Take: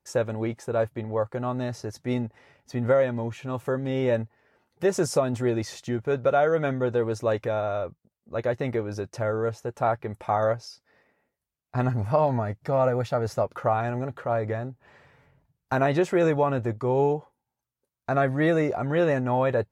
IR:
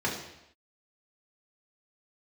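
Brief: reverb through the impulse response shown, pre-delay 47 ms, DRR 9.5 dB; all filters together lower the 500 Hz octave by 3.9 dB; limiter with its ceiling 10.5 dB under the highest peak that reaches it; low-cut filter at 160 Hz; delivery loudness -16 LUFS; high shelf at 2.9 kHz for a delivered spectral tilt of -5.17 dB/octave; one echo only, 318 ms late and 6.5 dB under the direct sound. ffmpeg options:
-filter_complex "[0:a]highpass=160,equalizer=f=500:t=o:g=-5,highshelf=f=2900:g=6.5,alimiter=limit=0.0944:level=0:latency=1,aecho=1:1:318:0.473,asplit=2[s0][s1];[1:a]atrim=start_sample=2205,adelay=47[s2];[s1][s2]afir=irnorm=-1:irlink=0,volume=0.112[s3];[s0][s3]amix=inputs=2:normalize=0,volume=5.62"

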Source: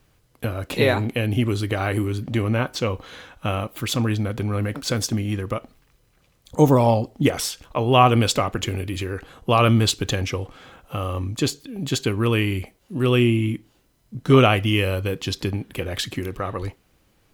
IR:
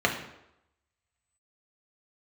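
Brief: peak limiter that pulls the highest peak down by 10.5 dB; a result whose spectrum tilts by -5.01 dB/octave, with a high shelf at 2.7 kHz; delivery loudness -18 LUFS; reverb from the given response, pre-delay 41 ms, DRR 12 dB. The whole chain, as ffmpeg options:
-filter_complex "[0:a]highshelf=f=2700:g=4,alimiter=limit=0.237:level=0:latency=1,asplit=2[s0][s1];[1:a]atrim=start_sample=2205,adelay=41[s2];[s1][s2]afir=irnorm=-1:irlink=0,volume=0.0501[s3];[s0][s3]amix=inputs=2:normalize=0,volume=2.11"

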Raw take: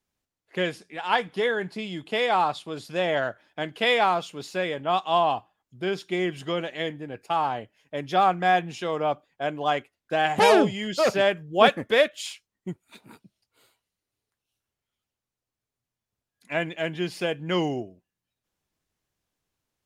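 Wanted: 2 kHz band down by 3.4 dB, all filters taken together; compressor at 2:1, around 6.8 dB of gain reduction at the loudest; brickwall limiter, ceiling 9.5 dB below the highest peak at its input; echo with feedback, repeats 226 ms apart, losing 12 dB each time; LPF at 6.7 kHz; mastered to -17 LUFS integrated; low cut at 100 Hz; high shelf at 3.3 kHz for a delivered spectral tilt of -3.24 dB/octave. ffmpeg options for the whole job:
-af "highpass=100,lowpass=6700,equalizer=f=2000:t=o:g=-5.5,highshelf=f=3300:g=4,acompressor=threshold=0.0562:ratio=2,alimiter=limit=0.0944:level=0:latency=1,aecho=1:1:226|452|678:0.251|0.0628|0.0157,volume=5.62"

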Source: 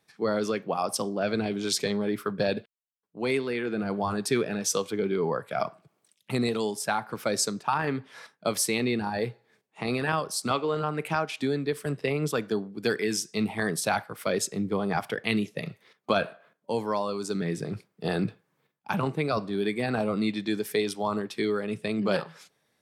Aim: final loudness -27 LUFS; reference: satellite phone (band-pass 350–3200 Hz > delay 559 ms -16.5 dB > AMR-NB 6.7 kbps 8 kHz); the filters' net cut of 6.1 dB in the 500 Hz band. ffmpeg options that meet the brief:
-af "highpass=350,lowpass=3200,equalizer=f=500:t=o:g=-6,aecho=1:1:559:0.15,volume=2.66" -ar 8000 -c:a libopencore_amrnb -b:a 6700

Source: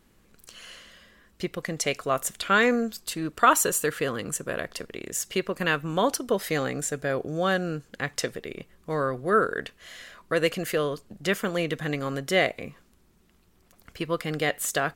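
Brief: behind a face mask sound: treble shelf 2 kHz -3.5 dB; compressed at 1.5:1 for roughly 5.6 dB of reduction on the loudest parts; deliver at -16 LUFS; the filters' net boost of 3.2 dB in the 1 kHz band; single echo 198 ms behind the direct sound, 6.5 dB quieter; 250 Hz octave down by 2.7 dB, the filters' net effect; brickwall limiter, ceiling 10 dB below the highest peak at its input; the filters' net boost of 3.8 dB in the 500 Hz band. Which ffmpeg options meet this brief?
-af "equalizer=f=250:t=o:g=-6,equalizer=f=500:t=o:g=5,equalizer=f=1000:t=o:g=4.5,acompressor=threshold=0.0562:ratio=1.5,alimiter=limit=0.158:level=0:latency=1,highshelf=f=2000:g=-3.5,aecho=1:1:198:0.473,volume=4.47"

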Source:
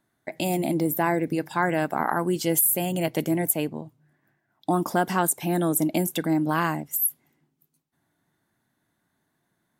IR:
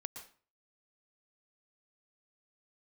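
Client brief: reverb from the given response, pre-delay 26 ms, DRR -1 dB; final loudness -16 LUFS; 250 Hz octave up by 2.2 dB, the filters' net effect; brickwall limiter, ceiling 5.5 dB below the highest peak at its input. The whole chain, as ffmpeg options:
-filter_complex "[0:a]equalizer=f=250:t=o:g=3.5,alimiter=limit=0.211:level=0:latency=1,asplit=2[s0][s1];[1:a]atrim=start_sample=2205,adelay=26[s2];[s1][s2]afir=irnorm=-1:irlink=0,volume=1.5[s3];[s0][s3]amix=inputs=2:normalize=0,volume=1.88"

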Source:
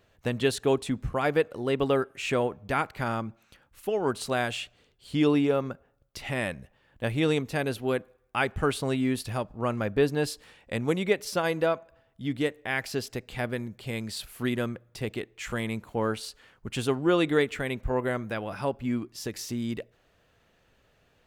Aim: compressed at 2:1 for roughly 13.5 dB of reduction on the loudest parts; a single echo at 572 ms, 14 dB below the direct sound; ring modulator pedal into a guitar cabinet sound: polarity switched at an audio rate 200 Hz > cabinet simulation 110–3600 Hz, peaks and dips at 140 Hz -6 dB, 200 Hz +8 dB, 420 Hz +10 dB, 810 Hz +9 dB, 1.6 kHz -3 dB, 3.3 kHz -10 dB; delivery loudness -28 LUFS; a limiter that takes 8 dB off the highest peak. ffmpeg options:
-af "acompressor=threshold=0.00631:ratio=2,alimiter=level_in=2.24:limit=0.0631:level=0:latency=1,volume=0.447,aecho=1:1:572:0.2,aeval=exprs='val(0)*sgn(sin(2*PI*200*n/s))':c=same,highpass=110,equalizer=f=140:t=q:w=4:g=-6,equalizer=f=200:t=q:w=4:g=8,equalizer=f=420:t=q:w=4:g=10,equalizer=f=810:t=q:w=4:g=9,equalizer=f=1600:t=q:w=4:g=-3,equalizer=f=3300:t=q:w=4:g=-10,lowpass=f=3600:w=0.5412,lowpass=f=3600:w=1.3066,volume=3.76"

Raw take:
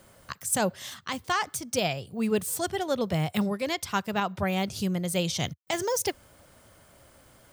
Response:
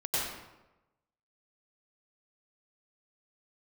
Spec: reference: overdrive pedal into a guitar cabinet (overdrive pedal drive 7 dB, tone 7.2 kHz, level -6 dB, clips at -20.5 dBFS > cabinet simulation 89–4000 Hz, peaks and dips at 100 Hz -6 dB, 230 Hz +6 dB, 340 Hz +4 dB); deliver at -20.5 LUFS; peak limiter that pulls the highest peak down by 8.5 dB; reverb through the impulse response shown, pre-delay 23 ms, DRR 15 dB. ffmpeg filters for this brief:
-filter_complex "[0:a]alimiter=limit=0.0794:level=0:latency=1,asplit=2[s0][s1];[1:a]atrim=start_sample=2205,adelay=23[s2];[s1][s2]afir=irnorm=-1:irlink=0,volume=0.0708[s3];[s0][s3]amix=inputs=2:normalize=0,asplit=2[s4][s5];[s5]highpass=f=720:p=1,volume=2.24,asoftclip=type=tanh:threshold=0.0944[s6];[s4][s6]amix=inputs=2:normalize=0,lowpass=f=7200:p=1,volume=0.501,highpass=89,equalizer=f=100:t=q:w=4:g=-6,equalizer=f=230:t=q:w=4:g=6,equalizer=f=340:t=q:w=4:g=4,lowpass=f=4000:w=0.5412,lowpass=f=4000:w=1.3066,volume=3.98"

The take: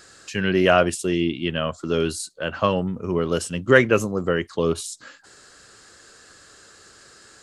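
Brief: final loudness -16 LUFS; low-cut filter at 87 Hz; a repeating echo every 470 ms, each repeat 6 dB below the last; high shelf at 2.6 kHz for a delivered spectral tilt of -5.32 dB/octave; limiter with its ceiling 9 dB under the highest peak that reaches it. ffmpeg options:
-af "highpass=87,highshelf=f=2600:g=-7.5,alimiter=limit=0.251:level=0:latency=1,aecho=1:1:470|940|1410|1880|2350|2820:0.501|0.251|0.125|0.0626|0.0313|0.0157,volume=2.66"

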